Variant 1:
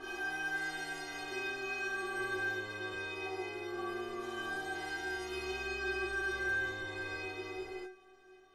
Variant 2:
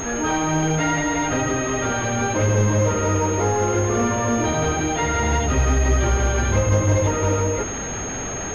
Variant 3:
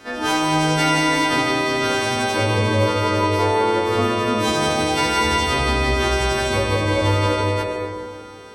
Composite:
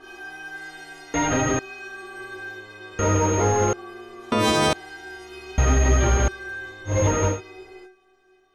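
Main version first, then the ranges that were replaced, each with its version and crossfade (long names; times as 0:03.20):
1
0:01.14–0:01.59: punch in from 2
0:02.99–0:03.73: punch in from 2
0:04.32–0:04.73: punch in from 3
0:05.58–0:06.28: punch in from 2
0:06.93–0:07.33: punch in from 2, crossfade 0.16 s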